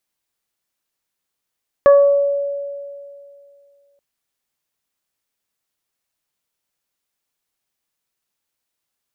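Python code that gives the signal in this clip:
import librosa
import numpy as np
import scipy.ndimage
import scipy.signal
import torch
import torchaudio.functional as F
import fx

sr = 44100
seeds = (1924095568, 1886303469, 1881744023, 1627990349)

y = fx.additive(sr, length_s=2.13, hz=565.0, level_db=-5, upper_db=(-10.0, -18), decay_s=2.43, upper_decays_s=(0.63, 0.31))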